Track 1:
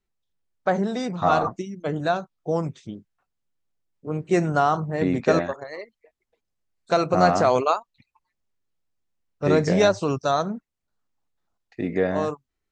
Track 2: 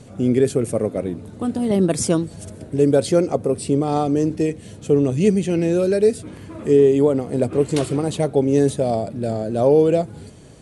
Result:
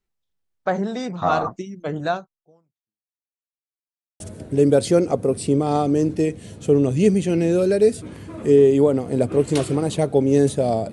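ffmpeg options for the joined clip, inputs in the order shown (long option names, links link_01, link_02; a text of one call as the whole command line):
ffmpeg -i cue0.wav -i cue1.wav -filter_complex "[0:a]apad=whole_dur=10.92,atrim=end=10.92,asplit=2[link_01][link_02];[link_01]atrim=end=3.37,asetpts=PTS-STARTPTS,afade=type=out:start_time=2.14:duration=1.23:curve=exp[link_03];[link_02]atrim=start=3.37:end=4.2,asetpts=PTS-STARTPTS,volume=0[link_04];[1:a]atrim=start=2.41:end=9.13,asetpts=PTS-STARTPTS,afade=type=in:duration=0.004:curve=hsin[link_05];[link_03][link_04][link_05]concat=n=3:v=0:a=1" out.wav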